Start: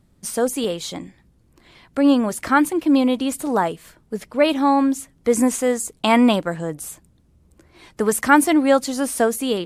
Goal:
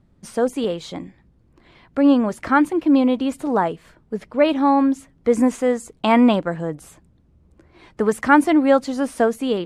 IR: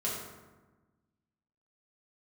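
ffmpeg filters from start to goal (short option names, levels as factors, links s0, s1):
-af "aemphasis=mode=reproduction:type=75fm"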